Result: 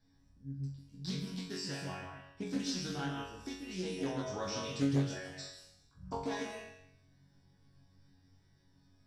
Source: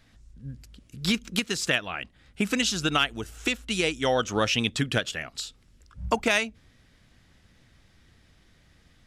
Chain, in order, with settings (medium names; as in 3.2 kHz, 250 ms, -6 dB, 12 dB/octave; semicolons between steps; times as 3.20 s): peak limiter -15.5 dBFS, peak gain reduction 5 dB; chord resonator F#2 fifth, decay 0.6 s; reverberation RT60 0.70 s, pre-delay 136 ms, DRR 2.5 dB; loudspeaker Doppler distortion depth 0.45 ms; trim -6 dB